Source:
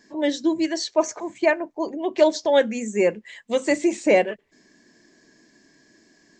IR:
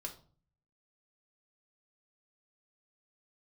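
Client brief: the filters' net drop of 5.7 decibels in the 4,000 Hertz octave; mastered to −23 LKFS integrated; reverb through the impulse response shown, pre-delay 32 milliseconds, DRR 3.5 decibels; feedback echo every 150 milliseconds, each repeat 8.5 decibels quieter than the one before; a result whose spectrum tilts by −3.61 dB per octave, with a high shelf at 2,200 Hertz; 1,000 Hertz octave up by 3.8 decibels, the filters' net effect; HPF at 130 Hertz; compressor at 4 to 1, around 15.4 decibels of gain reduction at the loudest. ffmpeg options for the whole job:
-filter_complex "[0:a]highpass=130,equalizer=frequency=1000:width_type=o:gain=5.5,highshelf=frequency=2200:gain=-3,equalizer=frequency=4000:width_type=o:gain=-4.5,acompressor=threshold=-30dB:ratio=4,aecho=1:1:150|300|450|600:0.376|0.143|0.0543|0.0206,asplit=2[link_01][link_02];[1:a]atrim=start_sample=2205,adelay=32[link_03];[link_02][link_03]afir=irnorm=-1:irlink=0,volume=-1.5dB[link_04];[link_01][link_04]amix=inputs=2:normalize=0,volume=8dB"

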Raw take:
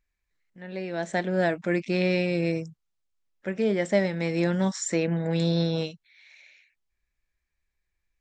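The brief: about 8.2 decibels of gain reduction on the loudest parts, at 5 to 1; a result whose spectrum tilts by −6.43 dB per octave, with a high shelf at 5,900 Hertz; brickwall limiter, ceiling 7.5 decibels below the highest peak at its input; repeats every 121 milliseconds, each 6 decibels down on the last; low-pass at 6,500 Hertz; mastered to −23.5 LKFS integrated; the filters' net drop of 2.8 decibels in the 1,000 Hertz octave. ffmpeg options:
ffmpeg -i in.wav -af "lowpass=6500,equalizer=frequency=1000:width_type=o:gain=-4.5,highshelf=frequency=5900:gain=-7,acompressor=threshold=-29dB:ratio=5,alimiter=level_in=1dB:limit=-24dB:level=0:latency=1,volume=-1dB,aecho=1:1:121|242|363|484|605|726:0.501|0.251|0.125|0.0626|0.0313|0.0157,volume=10.5dB" out.wav

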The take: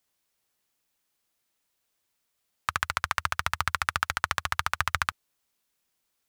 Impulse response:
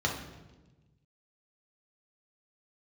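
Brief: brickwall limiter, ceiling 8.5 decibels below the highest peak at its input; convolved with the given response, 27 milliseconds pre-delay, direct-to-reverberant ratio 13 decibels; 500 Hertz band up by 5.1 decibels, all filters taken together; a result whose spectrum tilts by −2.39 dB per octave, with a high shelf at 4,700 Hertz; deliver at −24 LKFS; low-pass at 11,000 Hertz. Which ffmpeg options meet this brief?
-filter_complex "[0:a]lowpass=11000,equalizer=frequency=500:width_type=o:gain=7,highshelf=frequency=4700:gain=-7,alimiter=limit=-14dB:level=0:latency=1,asplit=2[link_01][link_02];[1:a]atrim=start_sample=2205,adelay=27[link_03];[link_02][link_03]afir=irnorm=-1:irlink=0,volume=-22dB[link_04];[link_01][link_04]amix=inputs=2:normalize=0,volume=12dB"

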